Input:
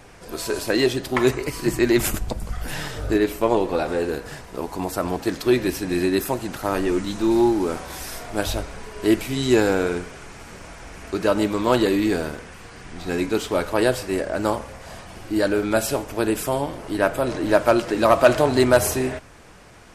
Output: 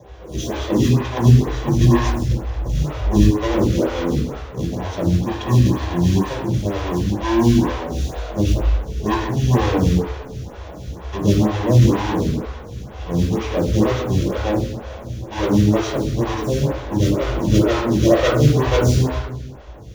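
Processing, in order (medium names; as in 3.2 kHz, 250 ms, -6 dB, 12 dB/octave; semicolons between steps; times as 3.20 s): square wave that keeps the level; bass shelf 100 Hz +10.5 dB; in parallel at +0.5 dB: peak limiter -15 dBFS, peak gain reduction 31.5 dB; on the sum: formant shift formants -5 st; reverberation RT60 1.1 s, pre-delay 3 ms, DRR -4 dB; lamp-driven phase shifter 2.1 Hz; trim -16 dB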